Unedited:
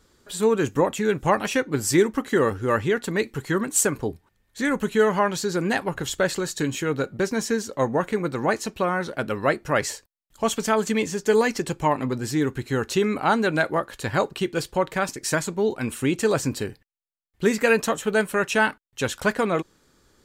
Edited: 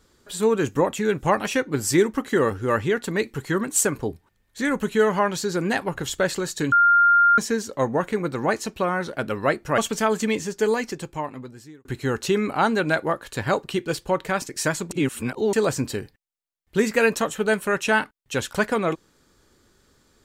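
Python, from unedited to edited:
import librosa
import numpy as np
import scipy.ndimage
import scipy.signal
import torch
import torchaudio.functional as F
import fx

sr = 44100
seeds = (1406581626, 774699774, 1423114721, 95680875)

y = fx.edit(x, sr, fx.bleep(start_s=6.72, length_s=0.66, hz=1400.0, db=-12.5),
    fx.cut(start_s=9.78, length_s=0.67),
    fx.fade_out_span(start_s=10.95, length_s=1.57),
    fx.reverse_span(start_s=15.58, length_s=0.62), tone=tone)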